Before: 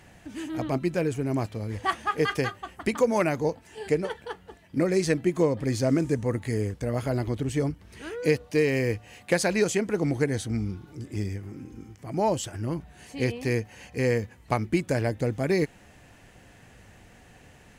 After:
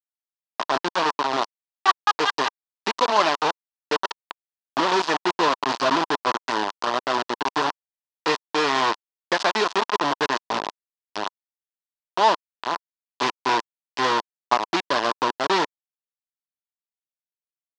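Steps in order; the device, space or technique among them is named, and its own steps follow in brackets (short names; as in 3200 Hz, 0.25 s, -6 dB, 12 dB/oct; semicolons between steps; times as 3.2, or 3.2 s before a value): LPF 10000 Hz 12 dB/oct; hand-held game console (bit-crush 4-bit; speaker cabinet 460–5100 Hz, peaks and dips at 500 Hz -8 dB, 1000 Hz +9 dB, 2200 Hz -8 dB); gain +5.5 dB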